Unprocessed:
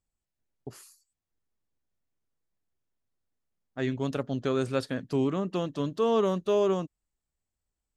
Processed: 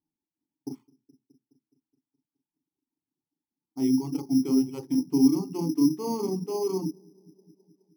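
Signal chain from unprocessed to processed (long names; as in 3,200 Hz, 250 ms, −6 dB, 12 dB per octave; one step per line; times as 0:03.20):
in parallel at −1 dB: brickwall limiter −26 dBFS, peak gain reduction 10 dB
on the sum: formant filter u
tilt shelving filter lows +6 dB, about 1,100 Hz
delay with a low-pass on its return 210 ms, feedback 60%, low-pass 400 Hz, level −14 dB
on a send at −7 dB: convolution reverb RT60 0.20 s, pre-delay 23 ms
on the sum: low-pass that shuts in the quiet parts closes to 1,500 Hz, open at −20.5 dBFS
reverb reduction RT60 1.1 s
bad sample-rate conversion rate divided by 8×, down none, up hold
level +4 dB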